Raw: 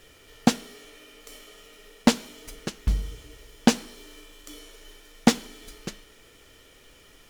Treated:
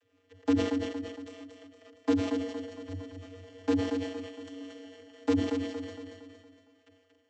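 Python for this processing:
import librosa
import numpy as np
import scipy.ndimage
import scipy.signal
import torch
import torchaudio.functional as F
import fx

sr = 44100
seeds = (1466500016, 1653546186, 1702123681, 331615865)

p1 = fx.tracing_dist(x, sr, depth_ms=0.25)
p2 = fx.low_shelf(p1, sr, hz=280.0, db=7.5)
p3 = fx.hum_notches(p2, sr, base_hz=50, count=8)
p4 = fx.level_steps(p3, sr, step_db=23)
p5 = fx.vocoder(p4, sr, bands=32, carrier='square', carrier_hz=93.4)
p6 = p5 + fx.echo_feedback(p5, sr, ms=231, feedback_pct=48, wet_db=-5.5, dry=0)
p7 = fx.sustainer(p6, sr, db_per_s=66.0)
y = F.gain(torch.from_numpy(p7), 2.0).numpy()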